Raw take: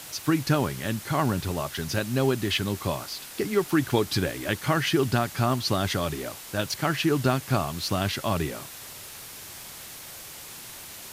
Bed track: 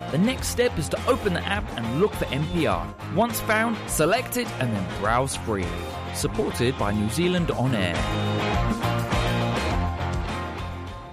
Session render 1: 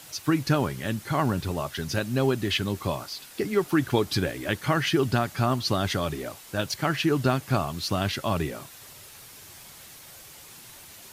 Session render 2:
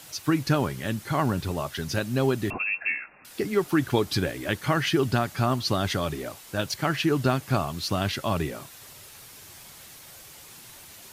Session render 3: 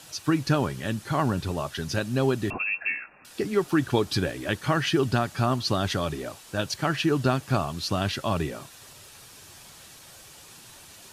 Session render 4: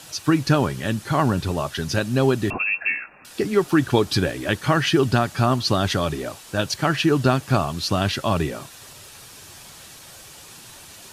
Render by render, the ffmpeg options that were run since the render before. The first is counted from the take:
-af "afftdn=nr=6:nf=-42"
-filter_complex "[0:a]asettb=1/sr,asplit=3[s0][s1][s2];[s0]atrim=end=2.504[s3];[s1]atrim=start=2.5:end=3.25,asetpts=PTS-STARTPTS,afade=t=in:d=0.004:c=qsin,afade=t=out:st=0.746:d=0.004:c=qsin,lowpass=f=2400:t=q:w=0.5098,lowpass=f=2400:t=q:w=0.6013,lowpass=f=2400:t=q:w=0.9,lowpass=f=2400:t=q:w=2.563,afreqshift=-2800[s4];[s2]atrim=start=3.246[s5];[s3][s4]acrossfade=d=0.004:c1=hsin:c2=qsin[s6];[s6][s5]acrossfade=d=0.004:c1=qsin:c2=hsin"
-af "lowpass=11000,bandreject=f=2100:w=12"
-af "volume=1.78"

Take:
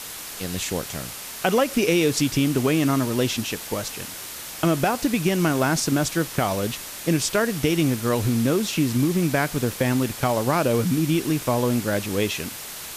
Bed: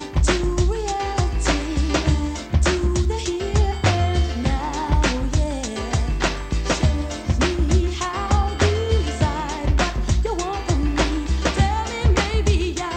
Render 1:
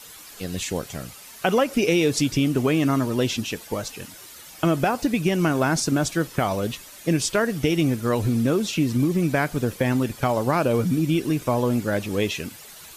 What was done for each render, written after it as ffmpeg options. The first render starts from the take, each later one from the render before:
-af "afftdn=nr=11:nf=-36"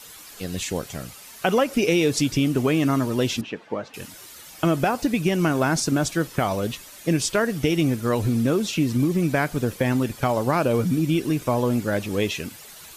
-filter_complex "[0:a]asettb=1/sr,asplit=3[s0][s1][s2];[s0]atrim=end=3.414[s3];[s1]atrim=start=3.41:end=3.94,asetpts=PTS-STARTPTS,afade=t=in:d=0.004:c=qsin,afade=t=out:st=0.526:d=0.004:c=qsin,highpass=170,lowpass=2100[s4];[s2]atrim=start=3.936[s5];[s3][s4]acrossfade=d=0.004:c1=hsin:c2=qsin[s6];[s6][s5]acrossfade=d=0.004:c1=qsin:c2=hsin"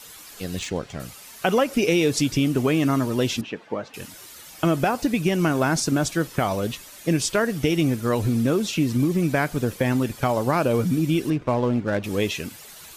-filter_complex "[0:a]asettb=1/sr,asplit=3[s0][s1][s2];[s0]atrim=end=0.594[s3];[s1]atrim=start=0.59:end=1,asetpts=PTS-STARTPTS,afade=t=in:d=0.004:c=qsin,afade=t=out:st=0.406:d=0.004:c=qsin,adynamicsmooth=sensitivity=4.5:basefreq=4000[s4];[s2]atrim=start=0.996[s5];[s3][s4]acrossfade=d=0.004:c1=hsin:c2=qsin[s6];[s6][s5]acrossfade=d=0.004:c1=qsin:c2=hsin,asettb=1/sr,asplit=3[s7][s8][s9];[s7]atrim=end=11.304[s10];[s8]atrim=start=11.3:end=12.04,asetpts=PTS-STARTPTS,afade=t=in:d=0.004:c=qsin,afade=t=out:st=0.736:d=0.004:c=qsin,adynamicsmooth=sensitivity=4:basefreq=1500[s11];[s9]atrim=start=12.036[s12];[s10][s11]acrossfade=d=0.004:c1=hsin:c2=qsin[s13];[s13][s12]acrossfade=d=0.004:c1=qsin:c2=hsin"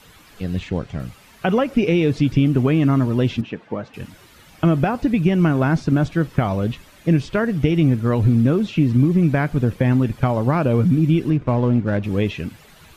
-filter_complex "[0:a]acrossover=split=4100[s0][s1];[s1]acompressor=threshold=0.00501:ratio=4:attack=1:release=60[s2];[s0][s2]amix=inputs=2:normalize=0,bass=f=250:g=9,treble=f=4000:g=-7"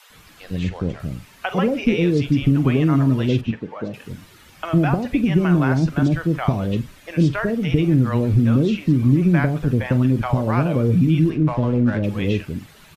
-filter_complex "[0:a]asplit=2[s0][s1];[s1]adelay=45,volume=0.2[s2];[s0][s2]amix=inputs=2:normalize=0,acrossover=split=610[s3][s4];[s3]adelay=100[s5];[s5][s4]amix=inputs=2:normalize=0"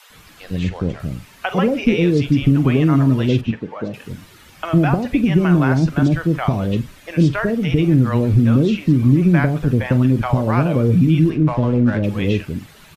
-af "volume=1.33,alimiter=limit=0.708:level=0:latency=1"

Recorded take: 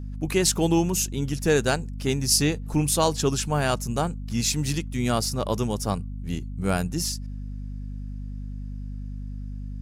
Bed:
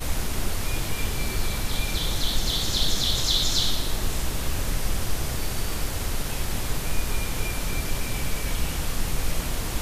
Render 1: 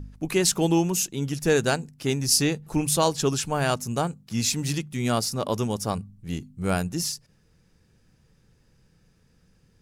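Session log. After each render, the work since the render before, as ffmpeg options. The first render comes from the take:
-af "bandreject=f=50:t=h:w=4,bandreject=f=100:t=h:w=4,bandreject=f=150:t=h:w=4,bandreject=f=200:t=h:w=4,bandreject=f=250:t=h:w=4"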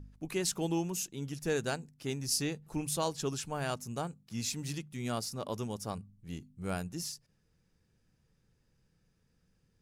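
-af "volume=0.282"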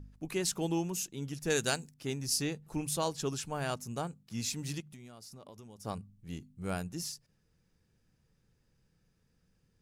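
-filter_complex "[0:a]asettb=1/sr,asplit=3[s0][s1][s2];[s0]atrim=end=1.504[s3];[s1]atrim=start=1.5:end=1.94,asetpts=PTS-STARTPTS,afade=t=in:d=0.004:c=qsin,afade=t=out:st=0.436:d=0.004:c=qsin,highshelf=f=2300:g=11[s4];[s2]atrim=start=1.936[s5];[s3][s4]acrossfade=d=0.004:c1=hsin:c2=qsin[s6];[s6][s5]acrossfade=d=0.004:c1=qsin:c2=hsin,asettb=1/sr,asplit=3[s7][s8][s9];[s7]atrim=end=4.804[s10];[s8]atrim=start=4.8:end=5.85,asetpts=PTS-STARTPTS,afade=t=in:d=0.004:c=qsin,afade=t=out:st=1.046:d=0.004:c=qsin,acompressor=threshold=0.00501:ratio=16:attack=3.2:release=140:knee=1:detection=peak[s11];[s9]atrim=start=5.846[s12];[s10][s11]acrossfade=d=0.004:c1=hsin:c2=qsin[s13];[s13][s12]acrossfade=d=0.004:c1=qsin:c2=hsin"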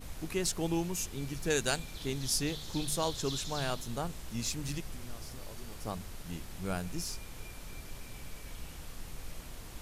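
-filter_complex "[1:a]volume=0.126[s0];[0:a][s0]amix=inputs=2:normalize=0"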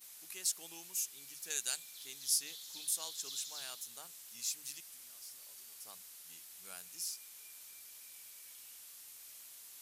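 -af "aderivative,bandreject=f=50:t=h:w=6,bandreject=f=100:t=h:w=6,bandreject=f=150:t=h:w=6"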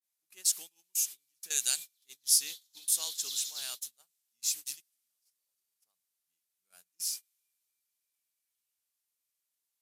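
-af "agate=range=0.0251:threshold=0.00562:ratio=16:detection=peak,adynamicequalizer=threshold=0.00158:dfrequency=2100:dqfactor=0.7:tfrequency=2100:tqfactor=0.7:attack=5:release=100:ratio=0.375:range=4:mode=boostabove:tftype=highshelf"

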